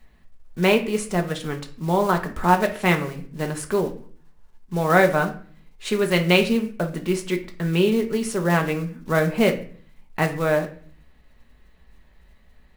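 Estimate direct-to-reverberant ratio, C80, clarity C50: 4.0 dB, 16.5 dB, 12.5 dB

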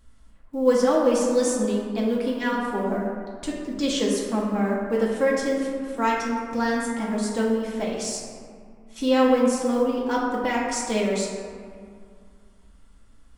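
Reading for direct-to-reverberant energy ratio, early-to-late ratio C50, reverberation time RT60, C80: -4.0 dB, 1.0 dB, 2.2 s, 3.0 dB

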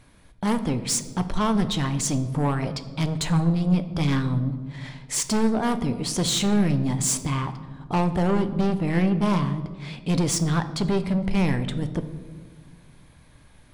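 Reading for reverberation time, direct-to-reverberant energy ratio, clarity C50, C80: 1.5 s, 9.0 dB, 12.5 dB, 14.5 dB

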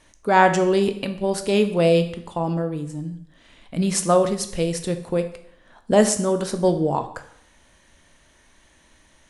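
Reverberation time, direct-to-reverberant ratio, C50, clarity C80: 0.75 s, 8.0 dB, 11.5 dB, 14.5 dB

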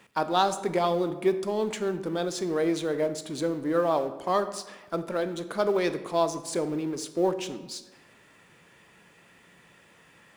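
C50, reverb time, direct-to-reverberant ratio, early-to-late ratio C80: 12.0 dB, 1.1 s, 10.0 dB, 14.0 dB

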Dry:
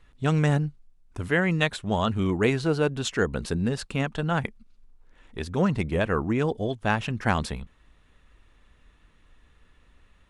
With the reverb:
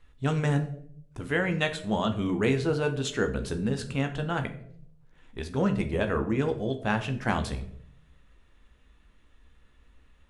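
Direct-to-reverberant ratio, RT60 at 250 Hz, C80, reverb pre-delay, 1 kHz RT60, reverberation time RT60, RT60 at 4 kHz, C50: 6.0 dB, 0.85 s, 15.5 dB, 14 ms, 0.55 s, 0.65 s, 0.40 s, 12.0 dB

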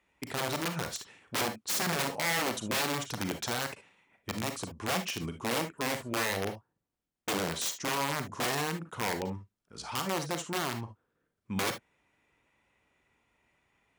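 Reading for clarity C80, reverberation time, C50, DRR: 32.5 dB, no single decay rate, 10.0 dB, 7.0 dB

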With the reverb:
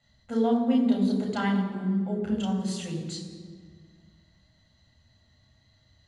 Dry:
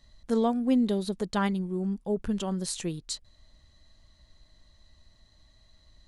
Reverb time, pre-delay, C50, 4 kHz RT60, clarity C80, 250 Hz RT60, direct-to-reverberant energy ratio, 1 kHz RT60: 1.8 s, 3 ms, 5.0 dB, 1.2 s, 6.5 dB, 2.3 s, 0.0 dB, 1.7 s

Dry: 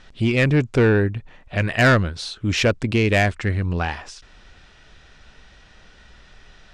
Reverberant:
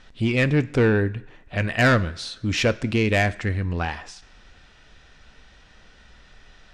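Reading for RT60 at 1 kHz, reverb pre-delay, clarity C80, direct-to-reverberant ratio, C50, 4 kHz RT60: 1.0 s, 3 ms, 21.5 dB, 12.0 dB, 19.0 dB, 0.95 s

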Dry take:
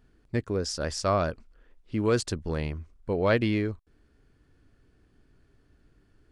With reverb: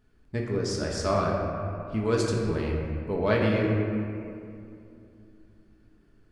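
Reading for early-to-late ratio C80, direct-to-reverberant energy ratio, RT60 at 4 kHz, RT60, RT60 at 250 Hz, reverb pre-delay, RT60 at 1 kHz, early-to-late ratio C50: 2.0 dB, -2.5 dB, 1.4 s, 2.5 s, 3.4 s, 5 ms, 2.4 s, 1.0 dB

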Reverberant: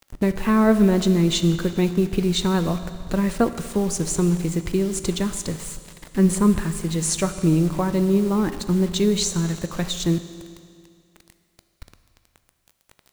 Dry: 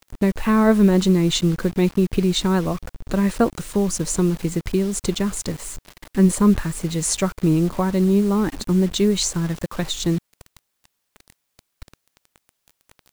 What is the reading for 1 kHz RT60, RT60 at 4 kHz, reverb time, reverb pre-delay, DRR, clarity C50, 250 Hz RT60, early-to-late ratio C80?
2.2 s, 2.2 s, 2.2 s, 12 ms, 10.5 dB, 11.5 dB, 2.2 s, 12.5 dB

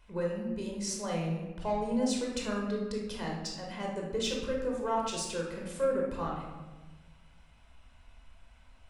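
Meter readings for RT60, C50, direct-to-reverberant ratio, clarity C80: 1.2 s, 2.0 dB, -1.5 dB, 5.0 dB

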